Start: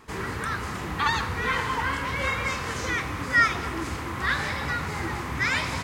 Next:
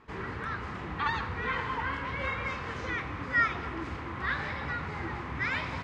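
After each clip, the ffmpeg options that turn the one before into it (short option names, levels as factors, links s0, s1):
-af "lowpass=3100,volume=0.531"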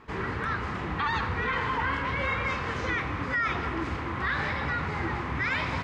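-af "alimiter=level_in=1.12:limit=0.0631:level=0:latency=1:release=24,volume=0.891,volume=1.88"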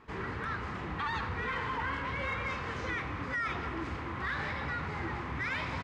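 -filter_complex "[0:a]asplit=2[s0][s1];[s1]asoftclip=type=tanh:threshold=0.0299,volume=0.335[s2];[s0][s2]amix=inputs=2:normalize=0,aresample=32000,aresample=44100,volume=0.422"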